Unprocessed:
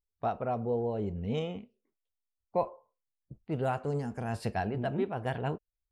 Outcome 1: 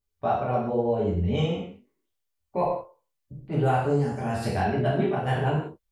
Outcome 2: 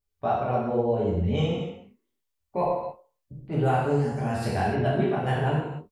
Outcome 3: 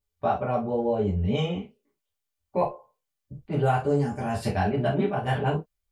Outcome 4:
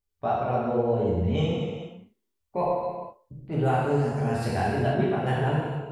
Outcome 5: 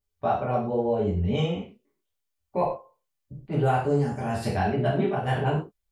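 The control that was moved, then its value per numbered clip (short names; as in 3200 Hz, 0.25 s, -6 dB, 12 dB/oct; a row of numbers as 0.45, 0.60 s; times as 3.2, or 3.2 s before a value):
non-linear reverb, gate: 220, 330, 90, 510, 150 ms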